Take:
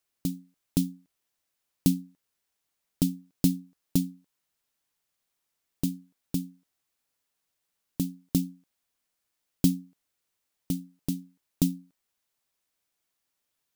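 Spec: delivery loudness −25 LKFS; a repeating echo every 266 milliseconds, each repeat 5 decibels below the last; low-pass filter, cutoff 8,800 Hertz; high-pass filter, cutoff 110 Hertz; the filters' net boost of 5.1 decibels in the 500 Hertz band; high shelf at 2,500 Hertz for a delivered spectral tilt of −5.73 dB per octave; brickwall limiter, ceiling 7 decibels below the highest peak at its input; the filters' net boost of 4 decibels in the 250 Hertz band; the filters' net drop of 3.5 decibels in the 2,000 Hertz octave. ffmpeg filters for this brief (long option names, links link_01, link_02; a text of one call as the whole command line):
ffmpeg -i in.wav -af "highpass=110,lowpass=8800,equalizer=frequency=250:width_type=o:gain=4,equalizer=frequency=500:width_type=o:gain=5.5,equalizer=frequency=2000:width_type=o:gain=-8.5,highshelf=frequency=2500:gain=4.5,alimiter=limit=-12.5dB:level=0:latency=1,aecho=1:1:266|532|798|1064|1330|1596|1862:0.562|0.315|0.176|0.0988|0.0553|0.031|0.0173,volume=5.5dB" out.wav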